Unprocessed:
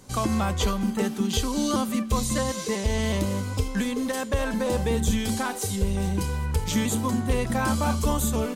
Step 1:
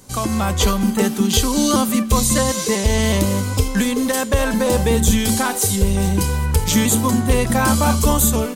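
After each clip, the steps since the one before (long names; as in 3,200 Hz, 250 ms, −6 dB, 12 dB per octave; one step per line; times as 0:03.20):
automatic gain control gain up to 5 dB
high-shelf EQ 7,800 Hz +8.5 dB
level +3 dB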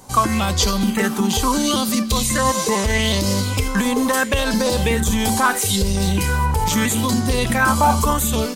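brickwall limiter −10.5 dBFS, peak gain reduction 9 dB
auto-filter bell 0.76 Hz 830–5,100 Hz +12 dB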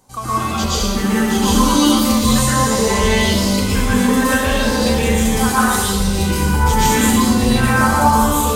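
automatic gain control
dense smooth reverb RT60 1.5 s, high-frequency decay 0.65×, pre-delay 105 ms, DRR −9.5 dB
level −11.5 dB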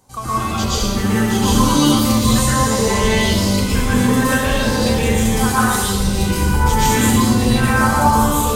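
sub-octave generator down 1 octave, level −5 dB
level −1 dB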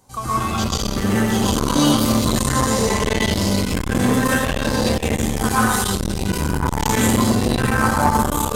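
saturating transformer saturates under 490 Hz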